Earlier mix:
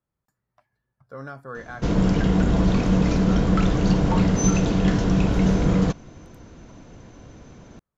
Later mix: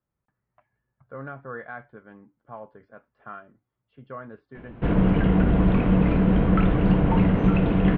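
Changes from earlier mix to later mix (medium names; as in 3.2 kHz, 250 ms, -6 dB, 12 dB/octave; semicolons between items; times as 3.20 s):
background: entry +3.00 s; master: add steep low-pass 2.9 kHz 36 dB/octave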